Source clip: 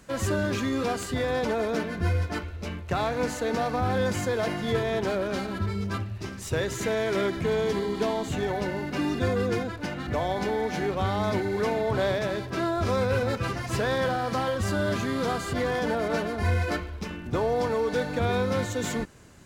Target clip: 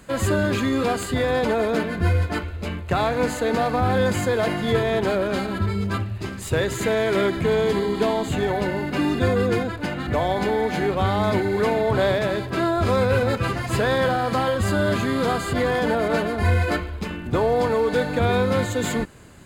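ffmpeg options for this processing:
-af "equalizer=f=5.7k:w=7.3:g=-14.5,volume=5.5dB"

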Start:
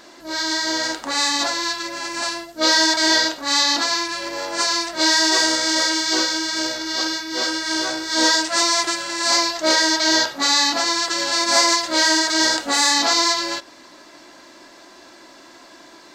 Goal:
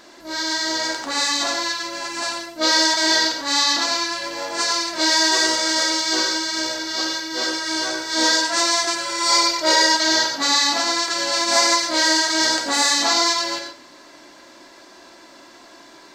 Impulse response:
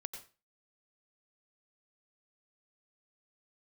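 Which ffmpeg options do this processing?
-filter_complex "[0:a]asettb=1/sr,asplit=3[a][b][c];[a]atrim=end=9.054[d];[b]atrim=start=9.05:end=9.95,asetpts=PTS-STARTPTS,afade=t=in:d=0.004:c=qsin,afade=t=out:st=0.896:d=0.004:c=qsin,aecho=1:1:2.1:0.71,atrim=end_sample=39690[e];[c]atrim=start=9.946[f];[d][e]acrossfade=d=0.004:c1=hsin:c2=qsin[g];[g][f]acrossfade=d=0.004:c1=qsin:c2=hsin[h];[1:a]atrim=start_sample=2205[i];[h][i]afir=irnorm=-1:irlink=0,volume=2dB"

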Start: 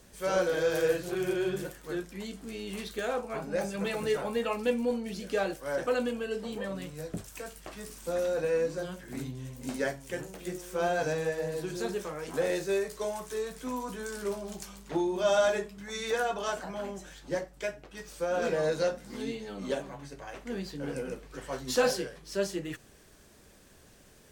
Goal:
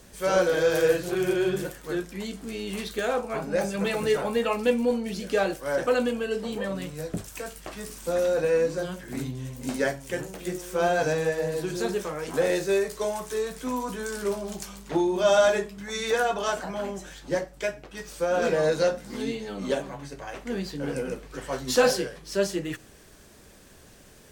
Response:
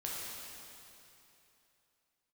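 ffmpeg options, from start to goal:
-filter_complex "[0:a]asplit=2[a][b];[1:a]atrim=start_sample=2205,atrim=end_sample=6174[c];[b][c]afir=irnorm=-1:irlink=0,volume=-24dB[d];[a][d]amix=inputs=2:normalize=0,volume=5dB"

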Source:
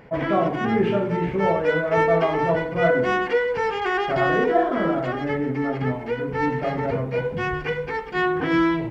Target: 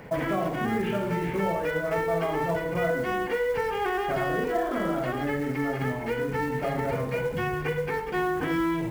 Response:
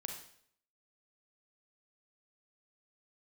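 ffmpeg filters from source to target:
-filter_complex "[0:a]acrossover=split=80|940|3400[a][b][c][d];[a]acompressor=threshold=-48dB:ratio=4[e];[b]acompressor=threshold=-32dB:ratio=4[f];[c]acompressor=threshold=-39dB:ratio=4[g];[d]acompressor=threshold=-59dB:ratio=4[h];[e][f][g][h]amix=inputs=4:normalize=0,acrusher=bits=6:mode=log:mix=0:aa=0.000001,asplit=2[i][j];[1:a]atrim=start_sample=2205,atrim=end_sample=6174[k];[j][k]afir=irnorm=-1:irlink=0,volume=4dB[l];[i][l]amix=inputs=2:normalize=0,volume=-3dB"

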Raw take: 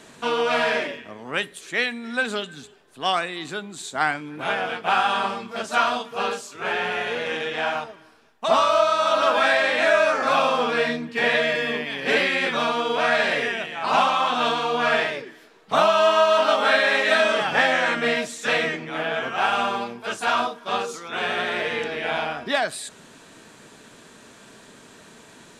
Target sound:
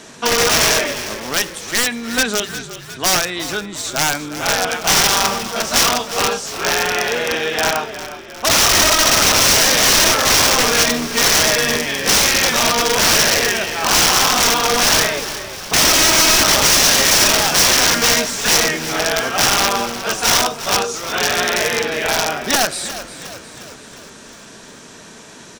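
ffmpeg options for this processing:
-filter_complex "[0:a]aeval=exprs='(mod(6.68*val(0)+1,2)-1)/6.68':c=same,equalizer=f=5.7k:w=3.2:g=9,asplit=7[a][b][c][d][e][f][g];[b]adelay=357,afreqshift=-45,volume=-13dB[h];[c]adelay=714,afreqshift=-90,volume=-18dB[i];[d]adelay=1071,afreqshift=-135,volume=-23.1dB[j];[e]adelay=1428,afreqshift=-180,volume=-28.1dB[k];[f]adelay=1785,afreqshift=-225,volume=-33.1dB[l];[g]adelay=2142,afreqshift=-270,volume=-38.2dB[m];[a][h][i][j][k][l][m]amix=inputs=7:normalize=0,volume=7dB"

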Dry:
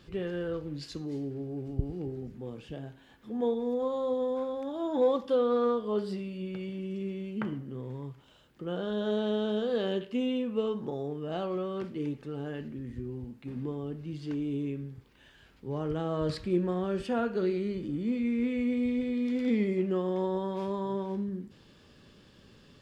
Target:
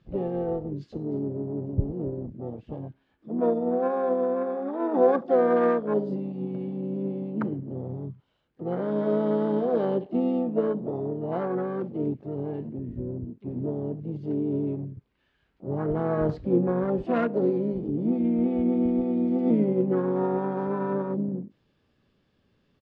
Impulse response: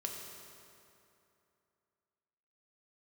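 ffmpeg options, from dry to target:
-filter_complex "[0:a]afwtdn=0.0141,asplit=4[a][b][c][d];[b]asetrate=33038,aresample=44100,atempo=1.33484,volume=-12dB[e];[c]asetrate=58866,aresample=44100,atempo=0.749154,volume=-11dB[f];[d]asetrate=66075,aresample=44100,atempo=0.66742,volume=-14dB[g];[a][e][f][g]amix=inputs=4:normalize=0,adynamicsmooth=sensitivity=4.5:basefreq=4.4k,volume=4.5dB"

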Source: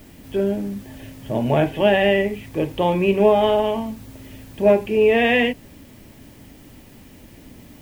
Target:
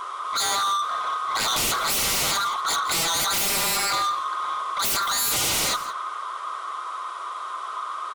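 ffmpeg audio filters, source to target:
-filter_complex "[0:a]afftfilt=real='real(if(lt(b,960),b+48*(1-2*mod(floor(b/48),2)),b),0)':imag='imag(if(lt(b,960),b+48*(1-2*mod(floor(b/48),2)),b),0)':win_size=2048:overlap=0.75,adynamicequalizer=threshold=0.0316:dfrequency=1700:dqfactor=2.1:tfrequency=1700:tqfactor=2.1:attack=5:release=100:ratio=0.375:range=2:mode=boostabove:tftype=bell,afftfilt=real='re*between(b*sr/4096,340,11000)':imag='im*between(b*sr/4096,340,11000)':win_size=4096:overlap=0.75,highshelf=f=3.6k:g=-12,aeval=exprs='0.299*sin(PI/2*5.62*val(0)/0.299)':c=same,asetrate=42336,aresample=44100,asoftclip=type=tanh:threshold=-17.5dB,bandreject=f=1.7k:w=5.2,asplit=2[a][b];[b]aecho=0:1:170:0.158[c];[a][c]amix=inputs=2:normalize=0,volume=-4dB"

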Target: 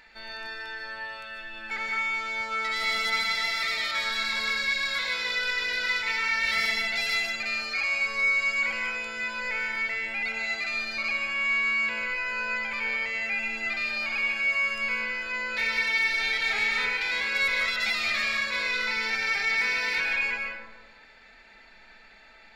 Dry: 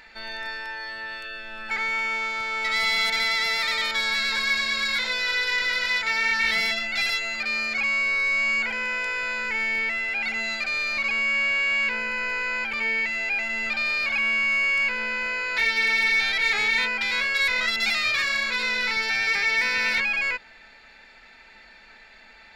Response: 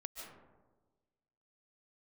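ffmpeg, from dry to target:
-filter_complex "[0:a]asettb=1/sr,asplit=3[a][b][c];[a]atrim=end=6.434[d];[b]atrim=start=6.43:end=8.92,asetpts=PTS-STARTPTS,afade=t=in:d=0.004:c=qsin,afade=t=out:st=2.486:d=0.004:c=qsin,equalizer=f=11k:t=o:w=2.2:g=3.5[e];[c]atrim=start=8.916[f];[d][e]acrossfade=d=0.004:c1=hsin:c2=qsin[g];[g][f]acrossfade=d=0.004:c1=qsin:c2=hsin[h];[1:a]atrim=start_sample=2205[i];[h][i]afir=irnorm=-1:irlink=0"

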